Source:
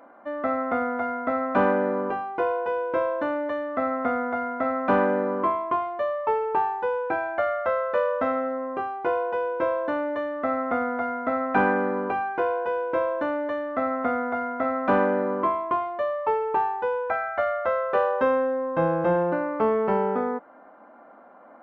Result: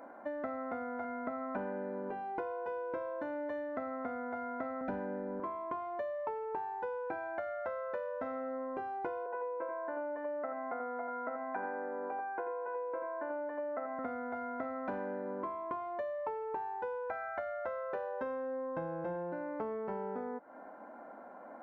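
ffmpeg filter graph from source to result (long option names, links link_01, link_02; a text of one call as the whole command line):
ffmpeg -i in.wav -filter_complex "[0:a]asettb=1/sr,asplit=3[link_01][link_02][link_03];[link_01]atrim=end=1.044[link_04];[link_02]atrim=start=1.04:end=2.38,asetpts=PTS-STARTPTS,afade=type=in:duration=0.004:curve=qsin,afade=type=out:start_time=1.336:duration=0.004:curve=qsin,acrossover=split=3000[link_05][link_06];[link_06]acompressor=threshold=-58dB:ratio=4:attack=1:release=60[link_07];[link_05][link_07]amix=inputs=2:normalize=0,aecho=1:1:4.7:0.34,atrim=end_sample=59094[link_08];[link_03]atrim=start=2.376[link_09];[link_04][link_08]acrossfade=duration=0.004:curve1=hsin:curve2=qsin[link_10];[link_10][link_09]acrossfade=duration=0.004:curve1=qsin:curve2=hsin,asettb=1/sr,asplit=3[link_11][link_12][link_13];[link_11]atrim=end=4.814[link_14];[link_12]atrim=start=4.81:end=5.4,asetpts=PTS-STARTPTS,afade=type=in:duration=0.004:curve=qsin,afade=type=out:start_time=0.586:duration=0.004:curve=qsin,asuperstop=centerf=1100:order=20:qfactor=6.5,lowshelf=frequency=200:gain=11[link_15];[link_13]atrim=start=5.396[link_16];[link_14][link_15]acrossfade=duration=0.004:curve1=hsin:curve2=qsin[link_17];[link_17][link_16]acrossfade=duration=0.004:curve1=qsin:curve2=hsin,asettb=1/sr,asplit=3[link_18][link_19][link_20];[link_18]atrim=end=9.264[link_21];[link_19]atrim=start=9.26:end=13.99,asetpts=PTS-STARTPTS,afade=type=in:duration=0.004:curve=qsin,afade=type=out:start_time=4.726:duration=0.004:curve=qsin,highpass=140,lowpass=3300,acrossover=split=370 2400:gain=0.251 1 0.0794[link_22][link_23][link_24];[link_22][link_23][link_24]amix=inputs=3:normalize=0,aecho=1:1:85:0.562,atrim=end_sample=208593[link_25];[link_20]atrim=start=13.986[link_26];[link_21][link_25]acrossfade=duration=0.004:curve1=hsin:curve2=qsin[link_27];[link_27][link_26]acrossfade=duration=0.004:curve1=qsin:curve2=hsin,equalizer=frequency=3000:width=1.9:gain=-7,bandreject=frequency=1200:width=7.3,acompressor=threshold=-36dB:ratio=10" out.wav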